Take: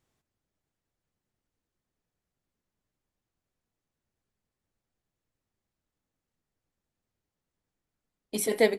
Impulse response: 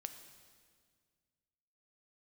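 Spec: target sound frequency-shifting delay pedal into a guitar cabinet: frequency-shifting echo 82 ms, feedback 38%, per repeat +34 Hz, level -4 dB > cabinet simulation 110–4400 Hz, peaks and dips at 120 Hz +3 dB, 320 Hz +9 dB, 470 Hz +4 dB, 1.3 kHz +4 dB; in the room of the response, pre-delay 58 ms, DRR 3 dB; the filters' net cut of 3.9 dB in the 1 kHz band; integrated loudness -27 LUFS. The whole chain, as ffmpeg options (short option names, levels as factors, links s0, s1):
-filter_complex "[0:a]equalizer=f=1000:t=o:g=-8,asplit=2[s0][s1];[1:a]atrim=start_sample=2205,adelay=58[s2];[s1][s2]afir=irnorm=-1:irlink=0,volume=1.06[s3];[s0][s3]amix=inputs=2:normalize=0,asplit=6[s4][s5][s6][s7][s8][s9];[s5]adelay=82,afreqshift=34,volume=0.631[s10];[s6]adelay=164,afreqshift=68,volume=0.24[s11];[s7]adelay=246,afreqshift=102,volume=0.0912[s12];[s8]adelay=328,afreqshift=136,volume=0.0347[s13];[s9]adelay=410,afreqshift=170,volume=0.0132[s14];[s4][s10][s11][s12][s13][s14]amix=inputs=6:normalize=0,highpass=110,equalizer=f=120:t=q:w=4:g=3,equalizer=f=320:t=q:w=4:g=9,equalizer=f=470:t=q:w=4:g=4,equalizer=f=1300:t=q:w=4:g=4,lowpass=f=4400:w=0.5412,lowpass=f=4400:w=1.3066,volume=0.841"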